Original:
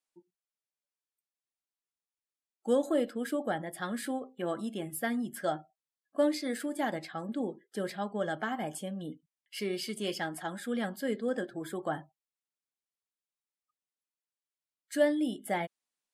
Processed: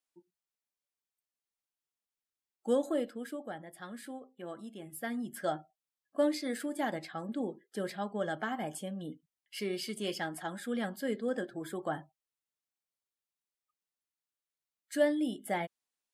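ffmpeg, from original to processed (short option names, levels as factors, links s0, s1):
-af "volume=2.11,afade=t=out:st=2.71:d=0.71:silence=0.398107,afade=t=in:st=4.79:d=0.65:silence=0.398107"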